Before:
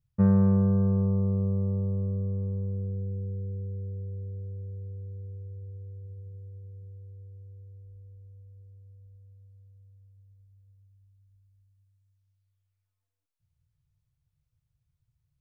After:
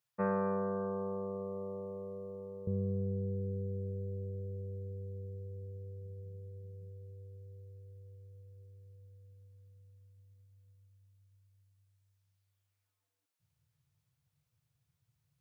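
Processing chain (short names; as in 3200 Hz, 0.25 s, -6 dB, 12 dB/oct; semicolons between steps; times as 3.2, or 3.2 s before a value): HPF 590 Hz 12 dB/oct, from 2.67 s 160 Hz; gain +4.5 dB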